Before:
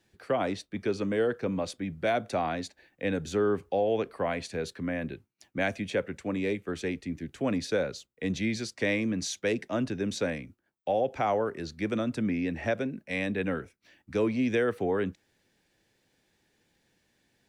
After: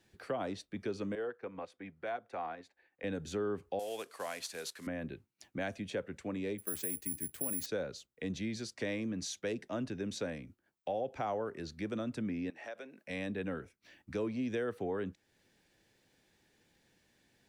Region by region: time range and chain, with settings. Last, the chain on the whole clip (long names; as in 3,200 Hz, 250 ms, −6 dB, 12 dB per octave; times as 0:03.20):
0:01.15–0:03.04: three-way crossover with the lows and the highs turned down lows −13 dB, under 410 Hz, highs −13 dB, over 2,600 Hz + notch filter 610 Hz, Q 7.7 + transient designer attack −3 dB, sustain −8 dB
0:03.79–0:04.87: variable-slope delta modulation 64 kbit/s + high-pass filter 900 Hz 6 dB per octave + high-shelf EQ 2,700 Hz +7.5 dB
0:06.58–0:07.66: downward compressor, threshold −29 dBFS + bad sample-rate conversion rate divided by 4×, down none, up zero stuff
0:12.50–0:13.07: downward compressor 2 to 1, threshold −39 dBFS + high-pass filter 540 Hz
whole clip: dynamic equaliser 2,200 Hz, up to −5 dB, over −47 dBFS, Q 2.7; downward compressor 1.5 to 1, threshold −48 dBFS